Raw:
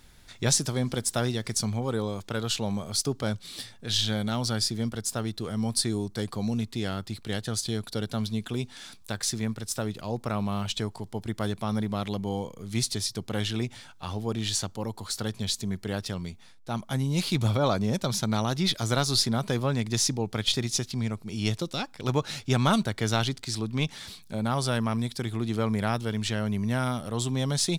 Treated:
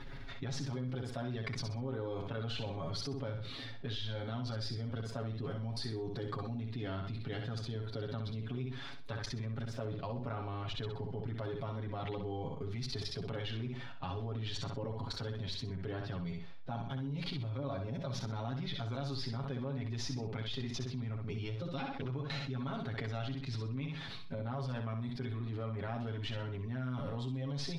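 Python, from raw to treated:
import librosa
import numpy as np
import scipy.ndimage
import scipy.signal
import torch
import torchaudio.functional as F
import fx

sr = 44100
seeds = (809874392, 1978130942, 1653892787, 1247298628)

p1 = fx.spec_quant(x, sr, step_db=15)
p2 = fx.air_absorb(p1, sr, metres=310.0)
p3 = fx.level_steps(p2, sr, step_db=21)
p4 = p3 + 0.94 * np.pad(p3, (int(7.3 * sr / 1000.0), 0))[:len(p3)]
p5 = p4 + fx.echo_feedback(p4, sr, ms=63, feedback_pct=28, wet_db=-7.0, dry=0)
p6 = fx.env_flatten(p5, sr, amount_pct=70)
y = F.gain(torch.from_numpy(p6), -3.0).numpy()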